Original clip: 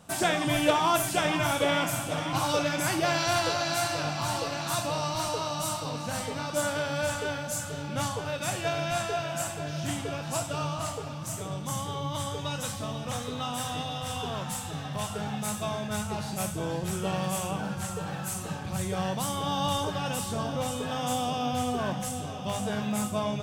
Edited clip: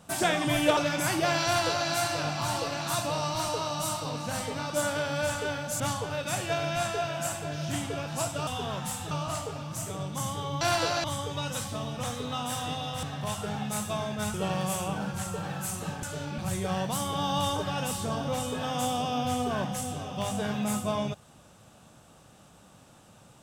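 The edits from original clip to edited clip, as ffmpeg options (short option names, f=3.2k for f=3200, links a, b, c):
-filter_complex "[0:a]asplit=11[a][b][c][d][e][f][g][h][i][j][k];[a]atrim=end=0.772[l];[b]atrim=start=2.568:end=7.602[m];[c]atrim=start=7.948:end=10.622[n];[d]atrim=start=14.108:end=14.752[o];[e]atrim=start=10.618:end=12.122[p];[f]atrim=start=3.248:end=3.682[q];[g]atrim=start=12.118:end=14.112[r];[h]atrim=start=14.748:end=16.062[s];[i]atrim=start=16.968:end=18.662[t];[j]atrim=start=7.598:end=7.952[u];[k]atrim=start=18.658[v];[l][m]acrossfade=d=0.004:c1=hsin:c2=hsin[w];[w][n]acrossfade=d=0.004:c1=hsin:c2=hsin[x];[x][o]acrossfade=d=0.004:c1=hsin:c2=hsin[y];[y][p]acrossfade=d=0.004:c1=hsin:c2=hsin[z];[z][q]acrossfade=d=0.004:c1=hsin:c2=hsin[aa];[aa][r]acrossfade=d=0.004:c1=hsin:c2=hsin[ab];[ab][s]acrossfade=d=0.004:c1=hsin:c2=hsin[ac];[ac][t]acrossfade=d=0.004:c1=hsin:c2=hsin[ad];[ad][u]acrossfade=d=0.004:c1=hsin:c2=hsin[ae];[ae][v]acrossfade=d=0.004:c1=hsin:c2=hsin"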